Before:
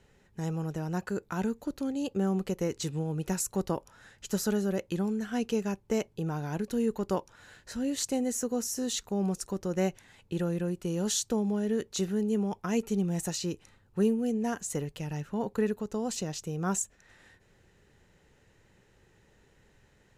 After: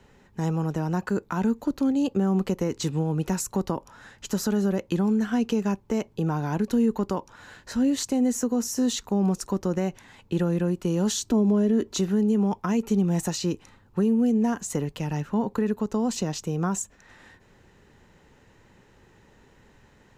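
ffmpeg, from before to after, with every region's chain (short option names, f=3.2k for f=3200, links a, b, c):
-filter_complex "[0:a]asettb=1/sr,asplit=3[a][b][c];[a]atrim=end=11.174[d];[b]atrim=start=11.17:end=11.99,asetpts=PTS-STARTPTS,afade=t=in:d=0.004:c=qsin,afade=t=out:st=0.816:d=0.004:c=qsin,equalizer=f=230:t=o:w=2.9:g=6,aecho=1:1:3:0.54,atrim=end_sample=36162[e];[c]atrim=start=11.986[f];[d][e]acrossfade=d=0.004:c1=hsin:c2=qsin[g];[g][f]acrossfade=d=0.004:c1=qsin:c2=hsin,equalizer=f=250:t=o:w=0.67:g=5,equalizer=f=1k:t=o:w=0.67:g=6,equalizer=f=10k:t=o:w=0.67:g=-5,alimiter=limit=-19.5dB:level=0:latency=1:release=101,acrossover=split=300[h][i];[i]acompressor=threshold=-33dB:ratio=2.5[j];[h][j]amix=inputs=2:normalize=0,volume=5.5dB"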